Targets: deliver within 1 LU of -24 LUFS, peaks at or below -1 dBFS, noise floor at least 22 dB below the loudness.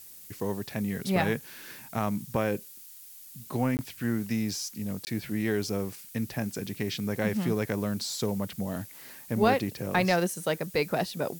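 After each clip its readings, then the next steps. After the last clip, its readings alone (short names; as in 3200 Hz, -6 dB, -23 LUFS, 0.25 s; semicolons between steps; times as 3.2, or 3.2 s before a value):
dropouts 2; longest dropout 19 ms; noise floor -48 dBFS; noise floor target -52 dBFS; loudness -30.0 LUFS; peak -11.0 dBFS; loudness target -24.0 LUFS
-> interpolate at 3.77/5.05, 19 ms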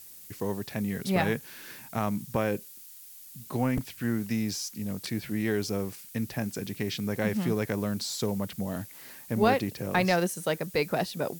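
dropouts 0; noise floor -48 dBFS; noise floor target -52 dBFS
-> noise print and reduce 6 dB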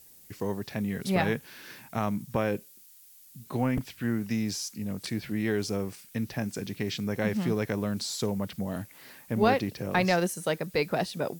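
noise floor -54 dBFS; loudness -30.5 LUFS; peak -11.5 dBFS; loudness target -24.0 LUFS
-> gain +6.5 dB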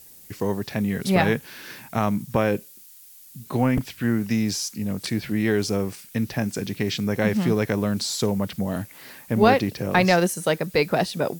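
loudness -24.0 LUFS; peak -5.0 dBFS; noise floor -48 dBFS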